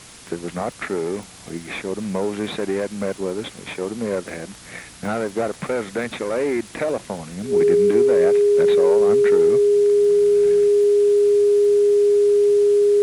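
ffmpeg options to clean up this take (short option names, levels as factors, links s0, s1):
-af "adeclick=t=4,bandreject=f=410:w=30,afwtdn=0.0089"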